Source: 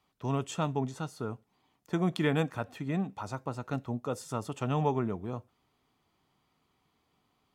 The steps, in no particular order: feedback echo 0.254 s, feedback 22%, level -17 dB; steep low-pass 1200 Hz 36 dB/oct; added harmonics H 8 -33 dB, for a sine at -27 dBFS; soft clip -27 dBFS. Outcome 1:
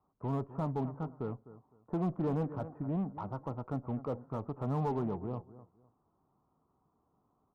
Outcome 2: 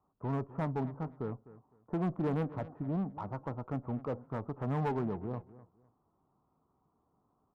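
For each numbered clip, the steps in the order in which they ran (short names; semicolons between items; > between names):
feedback echo > soft clip > steep low-pass > added harmonics; steep low-pass > soft clip > feedback echo > added harmonics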